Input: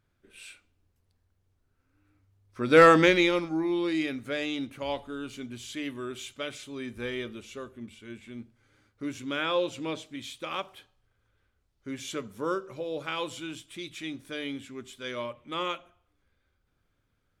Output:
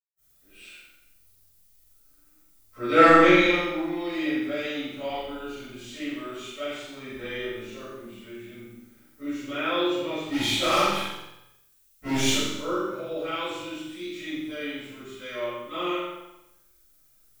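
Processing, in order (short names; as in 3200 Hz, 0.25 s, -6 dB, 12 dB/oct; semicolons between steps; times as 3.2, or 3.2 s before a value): high shelf 7200 Hz -9.5 dB; 10.06–12.14 sample leveller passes 5; added noise violet -63 dBFS; flutter echo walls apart 7.7 m, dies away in 0.76 s; reverb RT60 0.80 s, pre-delay 0.157 s; gain -3.5 dB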